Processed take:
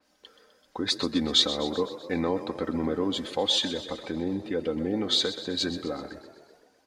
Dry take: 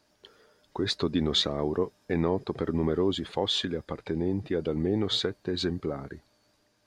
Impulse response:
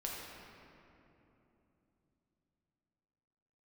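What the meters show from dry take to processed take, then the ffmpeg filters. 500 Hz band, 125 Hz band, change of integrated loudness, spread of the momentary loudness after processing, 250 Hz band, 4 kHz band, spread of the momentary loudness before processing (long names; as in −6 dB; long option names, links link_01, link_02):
−1.0 dB, −6.5 dB, +1.5 dB, 12 LU, 0.0 dB, +4.5 dB, 9 LU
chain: -filter_complex "[0:a]lowshelf=frequency=210:gain=-7,aecho=1:1:3.9:0.56,asplit=8[link_01][link_02][link_03][link_04][link_05][link_06][link_07][link_08];[link_02]adelay=127,afreqshift=32,volume=-13dB[link_09];[link_03]adelay=254,afreqshift=64,volume=-17.3dB[link_10];[link_04]adelay=381,afreqshift=96,volume=-21.6dB[link_11];[link_05]adelay=508,afreqshift=128,volume=-25.9dB[link_12];[link_06]adelay=635,afreqshift=160,volume=-30.2dB[link_13];[link_07]adelay=762,afreqshift=192,volume=-34.5dB[link_14];[link_08]adelay=889,afreqshift=224,volume=-38.8dB[link_15];[link_01][link_09][link_10][link_11][link_12][link_13][link_14][link_15]amix=inputs=8:normalize=0,asplit=2[link_16][link_17];[1:a]atrim=start_sample=2205,asetrate=83790,aresample=44100[link_18];[link_17][link_18]afir=irnorm=-1:irlink=0,volume=-18.5dB[link_19];[link_16][link_19]amix=inputs=2:normalize=0,adynamicequalizer=threshold=0.00891:dfrequency=4000:dqfactor=0.7:tfrequency=4000:tqfactor=0.7:attack=5:release=100:ratio=0.375:range=3:mode=boostabove:tftype=highshelf"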